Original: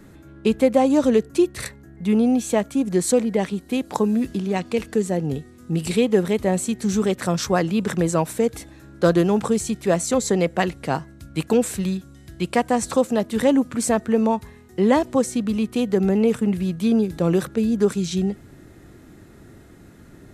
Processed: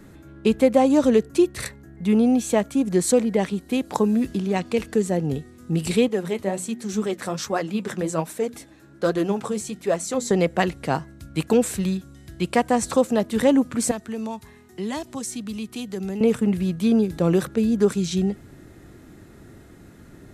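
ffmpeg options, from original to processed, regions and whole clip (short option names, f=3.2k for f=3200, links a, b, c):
-filter_complex "[0:a]asettb=1/sr,asplit=3[a][b][c];[a]atrim=end=6.084[d];[b]atrim=start=6.08:end=10.31,asetpts=PTS-STARTPTS,afade=t=in:d=0.004:c=qsin,afade=t=out:st=4.226:d=0.004:c=qsin,lowshelf=f=80:g=-11,flanger=delay=1.4:depth=9.3:regen=50:speed=1.3:shape=triangular,bandreject=f=60:t=h:w=6,bandreject=f=120:t=h:w=6,bandreject=f=180:t=h:w=6,bandreject=f=240:t=h:w=6[e];[c]atrim=start=10.306[f];[d][e]acrossfade=d=0.004:c1=hsin:c2=qsin[g];[g][f]acrossfade=d=0.004:c1=qsin:c2=hsin,asettb=1/sr,asplit=3[h][i][j];[h]atrim=end=13.914[k];[i]atrim=start=13.91:end=16.21,asetpts=PTS-STARTPTS,afade=t=in:d=0.004:c=qsin,afade=t=out:st=2.296:d=0.004:c=qsin,lowshelf=f=110:g=-11,acrossover=split=140|3000[l][m][n];[m]acompressor=threshold=-46dB:ratio=1.5:attack=3.2:release=140:knee=2.83:detection=peak[o];[l][o][n]amix=inputs=3:normalize=0,bandreject=f=510:w=5.7[p];[j]atrim=start=16.206[q];[k][p]acrossfade=d=0.004:c1=hsin:c2=qsin[r];[r][q]acrossfade=d=0.004:c1=qsin:c2=hsin"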